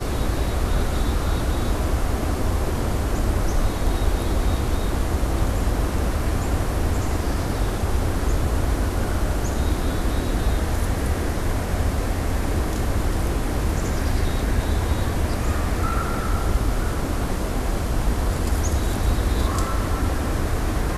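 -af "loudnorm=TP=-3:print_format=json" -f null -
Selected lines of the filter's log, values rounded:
"input_i" : "-24.4",
"input_tp" : "-7.4",
"input_lra" : "0.7",
"input_thresh" : "-34.4",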